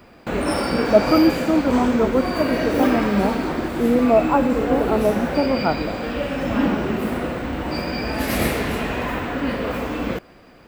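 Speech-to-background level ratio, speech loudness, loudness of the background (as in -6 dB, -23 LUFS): 3.0 dB, -20.5 LUFS, -23.5 LUFS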